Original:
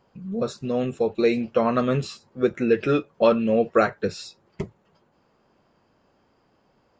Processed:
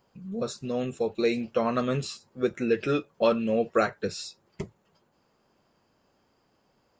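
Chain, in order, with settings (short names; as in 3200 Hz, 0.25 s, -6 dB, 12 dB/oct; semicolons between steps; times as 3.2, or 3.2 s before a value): high shelf 4900 Hz +11 dB; gain -5 dB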